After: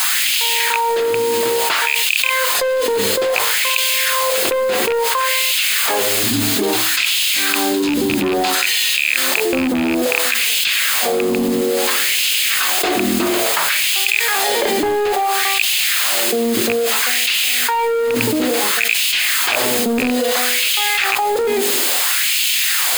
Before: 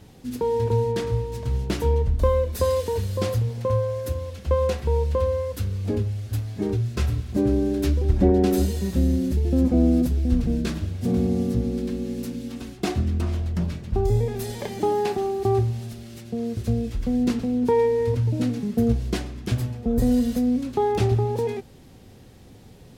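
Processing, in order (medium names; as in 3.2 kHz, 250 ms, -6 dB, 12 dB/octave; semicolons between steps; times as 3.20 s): rattle on loud lows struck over -17 dBFS, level -15 dBFS; 6.23–8.55 s: graphic EQ 125/250/500/2000/4000/8000 Hz +10/+8/-8/-5/+5/+5 dB; added noise blue -38 dBFS; LFO high-pass sine 0.59 Hz 260–2800 Hz; de-hum 45.07 Hz, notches 23; overdrive pedal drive 22 dB, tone 5.2 kHz, clips at -4.5 dBFS; peaking EQ 2.6 kHz +3.5 dB 2.2 oct; band-stop 5.7 kHz, Q 6.8; level flattener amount 100%; trim -8 dB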